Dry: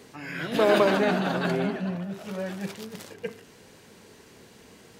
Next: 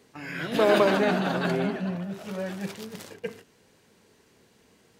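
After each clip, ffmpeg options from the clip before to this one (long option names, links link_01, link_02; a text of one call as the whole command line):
ffmpeg -i in.wav -af "agate=range=-9dB:threshold=-45dB:ratio=16:detection=peak" out.wav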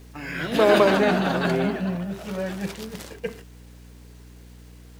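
ffmpeg -i in.wav -af "aeval=exprs='val(0)+0.00398*(sin(2*PI*60*n/s)+sin(2*PI*2*60*n/s)/2+sin(2*PI*3*60*n/s)/3+sin(2*PI*4*60*n/s)/4+sin(2*PI*5*60*n/s)/5)':channel_layout=same,acrusher=bits=9:mix=0:aa=0.000001,volume=3.5dB" out.wav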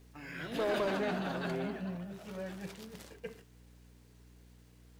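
ffmpeg -i in.wav -af "flanger=delay=6.8:depth=1.4:regen=-86:speed=1.6:shape=triangular,asoftclip=type=tanh:threshold=-17.5dB,volume=-8dB" out.wav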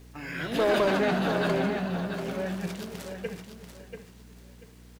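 ffmpeg -i in.wav -af "aecho=1:1:688|1376|2064:0.398|0.0995|0.0249,volume=8.5dB" out.wav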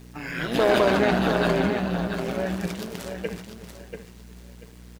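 ffmpeg -i in.wav -af "tremolo=f=120:d=0.621,volume=7dB" out.wav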